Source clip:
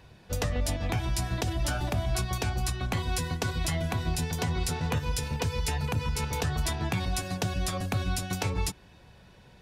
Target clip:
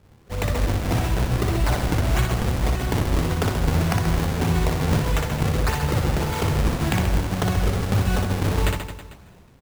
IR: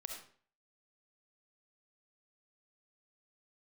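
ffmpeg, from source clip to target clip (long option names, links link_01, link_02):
-af "acrusher=samples=40:mix=1:aa=0.000001:lfo=1:lforange=64:lforate=1.7,dynaudnorm=framelen=130:gausssize=7:maxgain=6dB,aecho=1:1:60|132|218.4|322.1|446.5:0.631|0.398|0.251|0.158|0.1"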